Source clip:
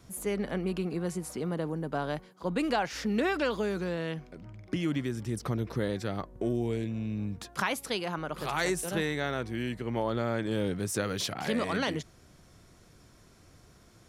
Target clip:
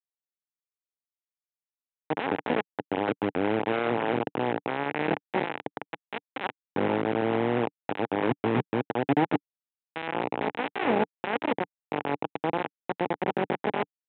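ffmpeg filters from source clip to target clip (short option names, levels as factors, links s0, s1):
-af "areverse,aemphasis=mode=reproduction:type=riaa,acompressor=threshold=0.0224:ratio=1.5,aresample=8000,acrusher=bits=3:mix=0:aa=0.000001,aresample=44100,highpass=f=130:w=0.5412,highpass=f=130:w=1.3066,equalizer=f=180:t=q:w=4:g=-4,equalizer=f=290:t=q:w=4:g=5,equalizer=f=450:t=q:w=4:g=5,equalizer=f=830:t=q:w=4:g=7,equalizer=f=1200:t=q:w=4:g=-4,lowpass=f=2700:w=0.5412,lowpass=f=2700:w=1.3066"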